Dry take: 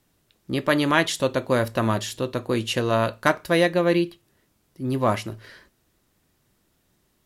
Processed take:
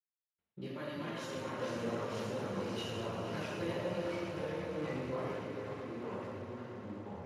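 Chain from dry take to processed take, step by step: Wiener smoothing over 9 samples; backlash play -43.5 dBFS; compressor 6:1, threshold -33 dBFS, peak gain reduction 18 dB; echoes that change speed 0.317 s, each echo -2 st, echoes 3; notch 3400 Hz, Q 12; swelling echo 0.116 s, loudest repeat 5, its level -13.5 dB; flange 0.71 Hz, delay 0.4 ms, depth 8.9 ms, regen +51%; reverb, pre-delay 76 ms; gain +13 dB; Speex 36 kbps 32000 Hz

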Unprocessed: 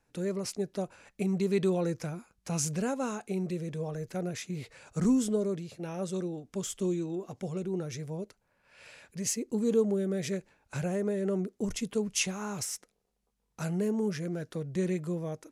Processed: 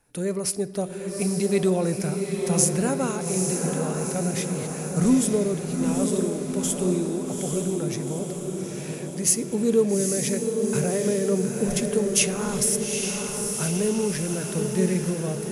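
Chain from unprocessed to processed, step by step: bell 10000 Hz +15 dB 0.37 oct; on a send: diffused feedback echo 0.847 s, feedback 58%, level -4 dB; on the sum: shoebox room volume 1200 m³, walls mixed, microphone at 0.33 m; gain +5.5 dB

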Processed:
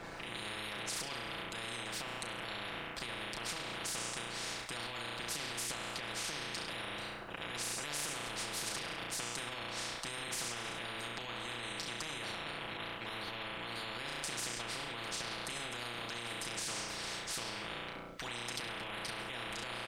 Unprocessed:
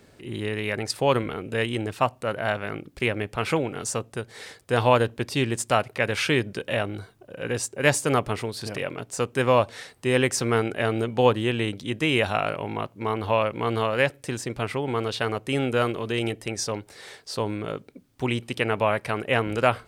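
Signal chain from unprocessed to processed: comb 6 ms, depth 77%; on a send: flutter echo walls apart 5.8 m, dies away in 0.66 s; on the sum: harmonic-percussive split harmonic -9 dB; limiter -23.5 dBFS, peak gain reduction 18 dB; LPF 1200 Hz 6 dB/oct; spectral compressor 10:1; gain +3.5 dB

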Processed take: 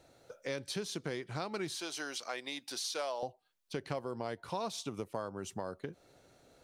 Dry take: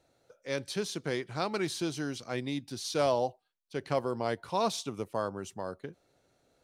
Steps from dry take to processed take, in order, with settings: 1.75–3.23 HPF 640 Hz 12 dB/oct; compressor 4:1, threshold -44 dBFS, peak gain reduction 17 dB; gain +7 dB

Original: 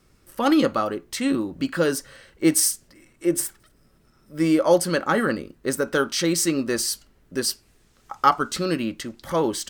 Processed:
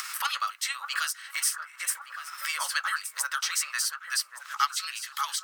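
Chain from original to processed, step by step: steep high-pass 1100 Hz 36 dB/oct; upward compressor, threshold -34 dBFS; granular stretch 0.56×, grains 0.109 s; on a send: echo with dull and thin repeats by turns 0.583 s, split 1500 Hz, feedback 51%, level -11 dB; on the sum: three-band squash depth 70%

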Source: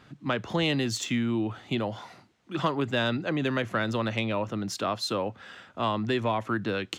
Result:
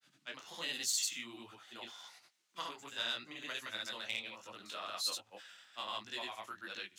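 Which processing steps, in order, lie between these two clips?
grains, pitch spread up and down by 0 st; differentiator; detuned doubles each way 46 cents; gain +6.5 dB

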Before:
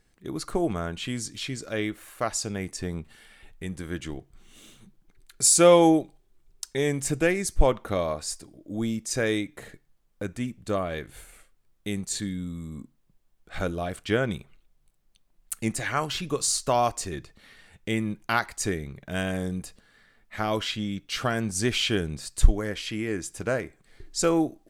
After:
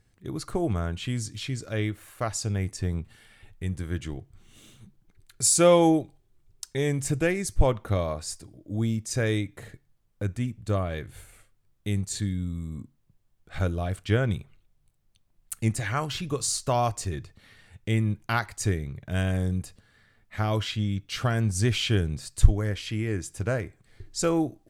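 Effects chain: bell 100 Hz +13.5 dB 0.91 oct; gain -2.5 dB

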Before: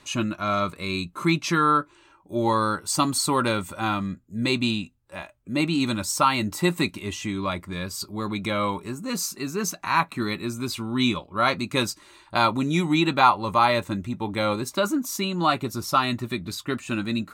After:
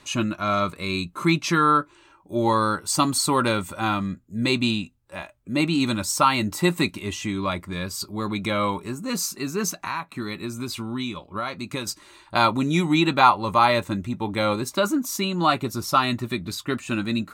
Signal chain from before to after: 9.76–11.87 compressor 6:1, threshold -28 dBFS, peak gain reduction 12.5 dB; gain +1.5 dB

